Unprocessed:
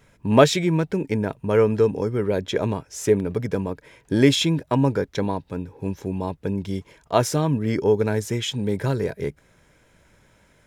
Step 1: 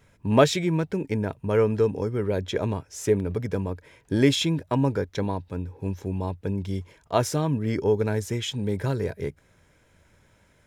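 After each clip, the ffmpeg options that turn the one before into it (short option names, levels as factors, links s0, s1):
-af "equalizer=f=89:w=4.3:g=8,volume=0.668"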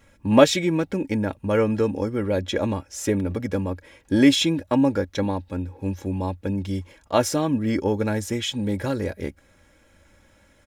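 -af "aecho=1:1:3.6:0.61,volume=1.33"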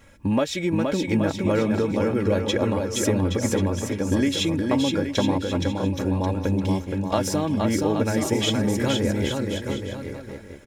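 -filter_complex "[0:a]acompressor=threshold=0.0631:ratio=6,asplit=2[s0][s1];[s1]aecho=0:1:470|822.5|1087|1285|1434:0.631|0.398|0.251|0.158|0.1[s2];[s0][s2]amix=inputs=2:normalize=0,volume=1.58"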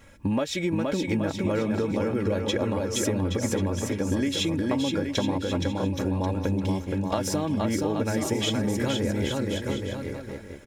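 -af "acompressor=threshold=0.0708:ratio=3"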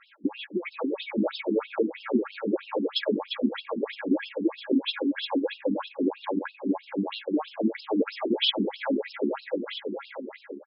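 -filter_complex "[0:a]asplit=2[s0][s1];[s1]adelay=250.7,volume=0.158,highshelf=f=4000:g=-5.64[s2];[s0][s2]amix=inputs=2:normalize=0,afftfilt=real='re*between(b*sr/1024,270*pow(3800/270,0.5+0.5*sin(2*PI*3.1*pts/sr))/1.41,270*pow(3800/270,0.5+0.5*sin(2*PI*3.1*pts/sr))*1.41)':imag='im*between(b*sr/1024,270*pow(3800/270,0.5+0.5*sin(2*PI*3.1*pts/sr))/1.41,270*pow(3800/270,0.5+0.5*sin(2*PI*3.1*pts/sr))*1.41)':win_size=1024:overlap=0.75,volume=2"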